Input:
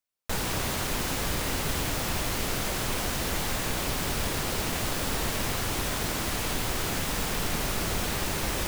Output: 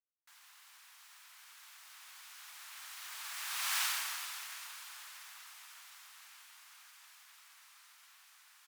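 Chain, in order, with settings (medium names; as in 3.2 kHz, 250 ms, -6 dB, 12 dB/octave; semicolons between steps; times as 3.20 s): Doppler pass-by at 3.79 s, 24 m/s, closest 3.5 m; harmony voices -5 st -3 dB; inverse Chebyshev high-pass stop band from 410 Hz, stop band 50 dB; trim -1 dB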